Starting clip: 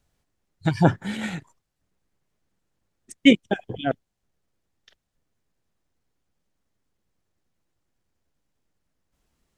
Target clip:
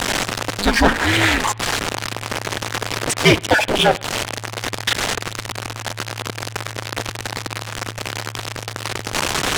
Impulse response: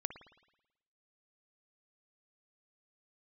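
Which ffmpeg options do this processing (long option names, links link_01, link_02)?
-filter_complex "[0:a]aeval=exprs='val(0)+0.5*0.0376*sgn(val(0))':channel_layout=same,asplit=2[link_01][link_02];[link_02]acompressor=threshold=-34dB:ratio=6,volume=1.5dB[link_03];[link_01][link_03]amix=inputs=2:normalize=0,asplit=2[link_04][link_05];[link_05]highpass=frequency=720:poles=1,volume=25dB,asoftclip=type=tanh:threshold=-0.5dB[link_06];[link_04][link_06]amix=inputs=2:normalize=0,lowpass=frequency=5700:poles=1,volume=-6dB,adynamicsmooth=sensitivity=5.5:basefreq=1500,asplit=2[link_07][link_08];[1:a]atrim=start_sample=2205[link_09];[link_08][link_09]afir=irnorm=-1:irlink=0,volume=-13dB[link_10];[link_07][link_10]amix=inputs=2:normalize=0,aeval=exprs='val(0)*sin(2*PI*110*n/s)':channel_layout=same,volume=-1.5dB"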